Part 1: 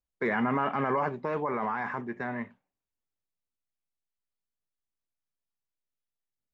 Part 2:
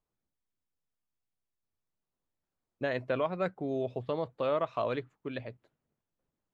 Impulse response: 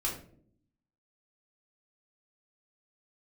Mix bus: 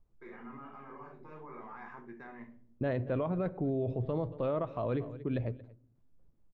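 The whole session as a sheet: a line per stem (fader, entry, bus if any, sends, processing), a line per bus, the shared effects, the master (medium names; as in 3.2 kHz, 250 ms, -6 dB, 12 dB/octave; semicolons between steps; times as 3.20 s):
-18.0 dB, 0.00 s, send -5 dB, no echo send, peak limiter -22.5 dBFS, peak gain reduction 6.5 dB; auto duck -12 dB, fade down 0.20 s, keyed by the second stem
+3.0 dB, 0.00 s, send -21 dB, echo send -22.5 dB, tilt EQ -4 dB/octave; tremolo saw down 0.84 Hz, depth 55%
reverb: on, RT60 0.60 s, pre-delay 3 ms
echo: delay 230 ms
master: peak limiter -24.5 dBFS, peak gain reduction 10.5 dB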